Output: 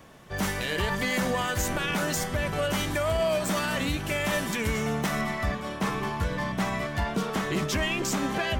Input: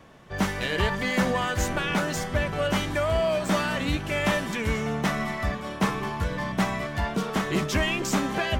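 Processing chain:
high-shelf EQ 7,600 Hz +11.5 dB, from 0:05.21 +2.5 dB
brickwall limiter −17.5 dBFS, peak gain reduction 6.5 dB

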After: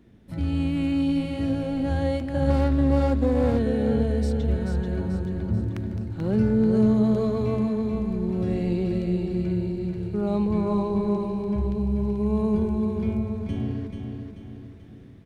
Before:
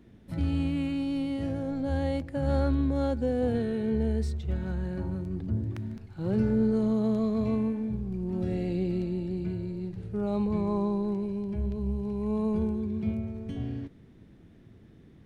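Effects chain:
automatic gain control gain up to 4 dB
repeating echo 436 ms, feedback 45%, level −5.5 dB
0:02.50–0:03.59: windowed peak hold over 9 samples

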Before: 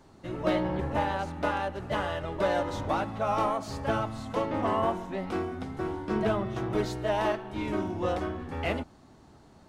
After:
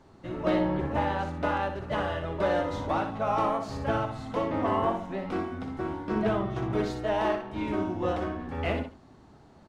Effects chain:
low-pass filter 4,000 Hz 6 dB per octave
on a send: multi-tap delay 61/138 ms −7/−20 dB

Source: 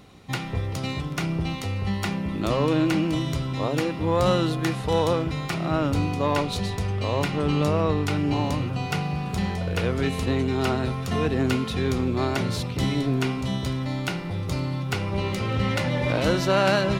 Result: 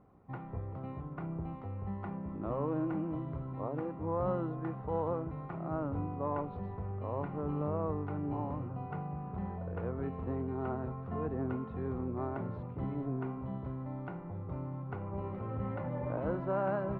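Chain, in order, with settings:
transistor ladder low-pass 1,400 Hz, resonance 25%
level −6.5 dB

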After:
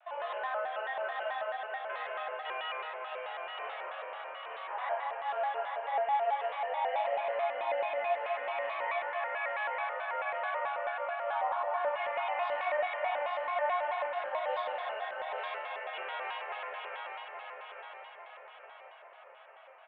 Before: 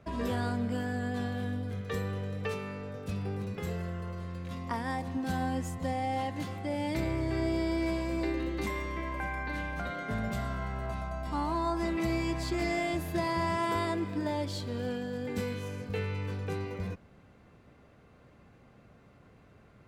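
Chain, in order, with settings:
Chebyshev band-pass filter 610–3,300 Hz, order 5
spectral tilt −2 dB per octave
brickwall limiter −35 dBFS, peak gain reduction 11.5 dB
frequency shifter −24 Hz
repeating echo 851 ms, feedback 50%, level −5 dB
convolution reverb RT60 2.0 s, pre-delay 6 ms, DRR −6 dB
pitch modulation by a square or saw wave square 4.6 Hz, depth 160 cents

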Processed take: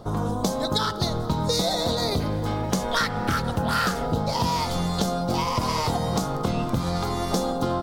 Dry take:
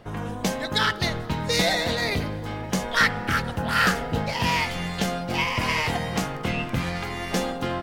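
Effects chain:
flat-topped bell 2,200 Hz −15.5 dB 1.1 octaves, from 0:02.18 −8 dB, from 0:04.05 −14.5 dB
downward compressor, threshold −27 dBFS, peak gain reduction 9.5 dB
level +6.5 dB

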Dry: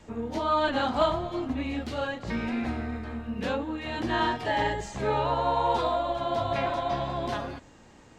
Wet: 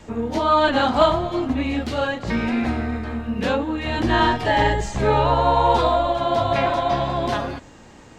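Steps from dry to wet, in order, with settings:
0:03.77–0:06.08: low-shelf EQ 81 Hz +10 dB
level +8 dB

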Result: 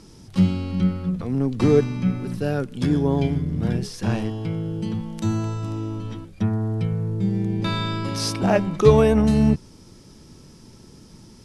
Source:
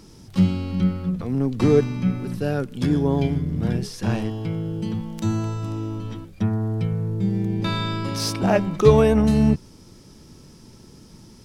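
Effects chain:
Butterworth low-pass 12,000 Hz 72 dB per octave

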